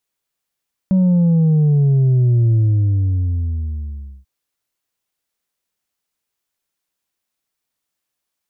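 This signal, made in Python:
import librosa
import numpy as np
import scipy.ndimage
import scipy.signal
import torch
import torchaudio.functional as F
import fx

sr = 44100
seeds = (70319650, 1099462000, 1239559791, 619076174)

y = fx.sub_drop(sr, level_db=-11.0, start_hz=190.0, length_s=3.34, drive_db=3.0, fade_s=1.73, end_hz=65.0)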